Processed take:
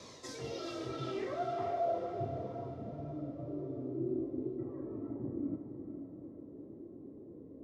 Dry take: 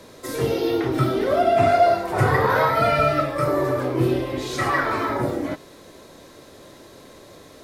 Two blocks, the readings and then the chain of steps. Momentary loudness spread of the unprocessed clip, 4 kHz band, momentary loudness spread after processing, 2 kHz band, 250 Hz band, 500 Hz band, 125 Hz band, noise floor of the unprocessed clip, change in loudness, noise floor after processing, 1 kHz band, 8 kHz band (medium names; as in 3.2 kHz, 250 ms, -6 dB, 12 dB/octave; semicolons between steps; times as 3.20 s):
9 LU, under -15 dB, 15 LU, -28.5 dB, -13.0 dB, -18.0 dB, -18.5 dB, -47 dBFS, -19.0 dB, -52 dBFS, -21.0 dB, under -15 dB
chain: spectral replace 0.62–1.06 s, 450–2600 Hz after; high-pass 74 Hz; band-stop 1.5 kHz, Q 6.3; reverse; compression 4:1, threshold -33 dBFS, peak gain reduction 17.5 dB; reverse; low-pass sweep 5.9 kHz -> 290 Hz, 0.77–2.30 s; wow and flutter 25 cents; flange 0.36 Hz, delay 0.8 ms, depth 2 ms, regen +59%; echo that smears into a reverb 459 ms, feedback 49%, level -7.5 dB; trim -2 dB